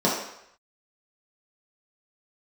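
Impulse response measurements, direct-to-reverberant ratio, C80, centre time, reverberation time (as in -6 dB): -6.5 dB, 6.0 dB, 48 ms, 0.75 s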